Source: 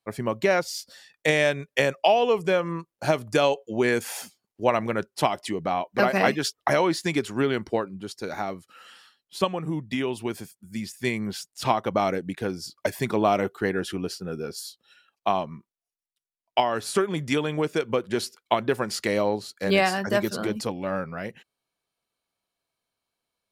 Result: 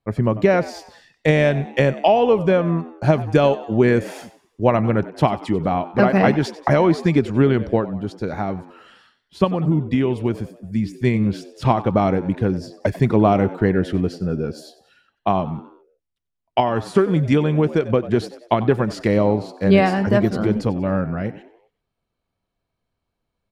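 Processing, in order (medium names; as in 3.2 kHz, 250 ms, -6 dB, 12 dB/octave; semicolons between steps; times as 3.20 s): RIAA curve playback; frequency-shifting echo 94 ms, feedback 47%, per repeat +78 Hz, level -17 dB; trim +3 dB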